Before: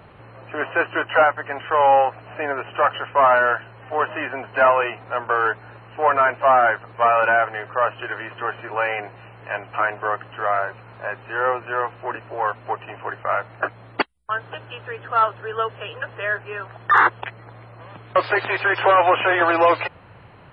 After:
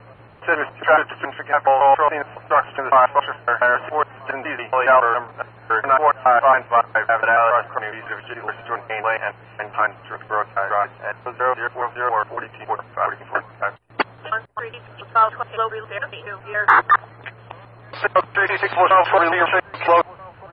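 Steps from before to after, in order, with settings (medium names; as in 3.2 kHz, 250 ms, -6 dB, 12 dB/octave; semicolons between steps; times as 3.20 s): slices played last to first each 139 ms, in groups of 3; dynamic bell 1.1 kHz, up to +4 dB, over -29 dBFS, Q 0.82; echo from a far wall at 220 m, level -25 dB; trim -1 dB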